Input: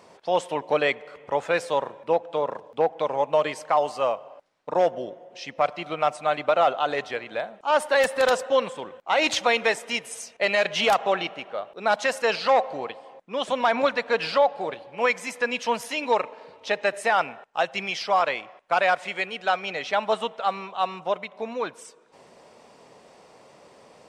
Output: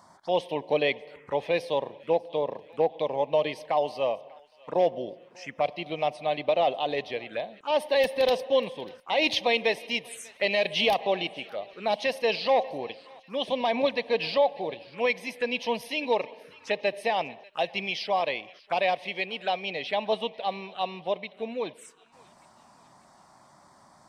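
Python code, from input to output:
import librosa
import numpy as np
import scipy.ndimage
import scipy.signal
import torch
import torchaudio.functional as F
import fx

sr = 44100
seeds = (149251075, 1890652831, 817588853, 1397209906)

y = fx.env_phaser(x, sr, low_hz=420.0, high_hz=1400.0, full_db=-27.0)
y = fx.echo_thinned(y, sr, ms=593, feedback_pct=52, hz=1200.0, wet_db=-21.5)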